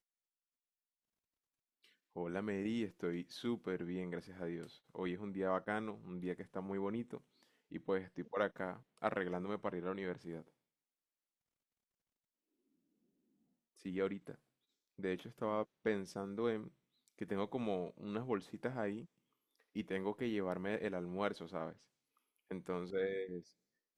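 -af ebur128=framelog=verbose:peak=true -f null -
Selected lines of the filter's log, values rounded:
Integrated loudness:
  I:         -41.7 LUFS
  Threshold: -52.0 LUFS
Loudness range:
  LRA:         6.4 LU
  Threshold: -63.0 LUFS
  LRA low:   -48.0 LUFS
  LRA high:  -41.6 LUFS
True peak:
  Peak:      -18.6 dBFS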